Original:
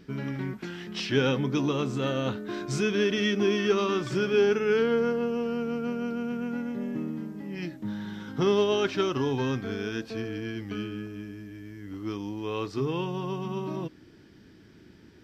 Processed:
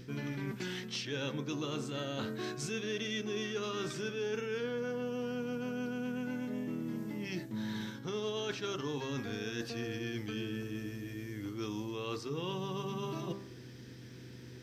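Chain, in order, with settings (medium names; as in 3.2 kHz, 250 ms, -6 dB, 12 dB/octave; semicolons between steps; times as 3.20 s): treble shelf 2.8 kHz +8.5 dB; de-hum 63.12 Hz, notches 27; reverse; compression 6:1, threshold -35 dBFS, peak gain reduction 16 dB; reverse; mains buzz 120 Hz, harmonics 4, -52 dBFS -8 dB/octave; speed mistake 24 fps film run at 25 fps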